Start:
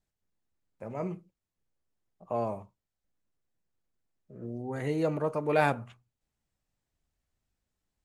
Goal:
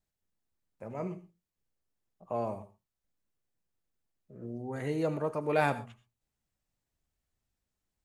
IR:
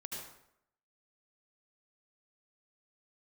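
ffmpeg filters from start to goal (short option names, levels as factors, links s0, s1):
-filter_complex "[0:a]asplit=2[s0][s1];[1:a]atrim=start_sample=2205,atrim=end_sample=6174,highshelf=f=4900:g=8.5[s2];[s1][s2]afir=irnorm=-1:irlink=0,volume=0.299[s3];[s0][s3]amix=inputs=2:normalize=0,volume=0.668"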